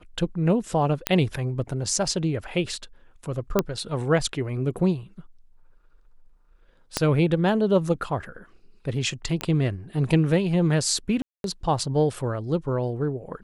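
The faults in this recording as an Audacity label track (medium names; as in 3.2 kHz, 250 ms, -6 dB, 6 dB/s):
1.070000	1.070000	pop -4 dBFS
3.590000	3.590000	pop -6 dBFS
6.970000	6.970000	pop -7 dBFS
9.410000	9.410000	pop -13 dBFS
11.220000	11.440000	dropout 222 ms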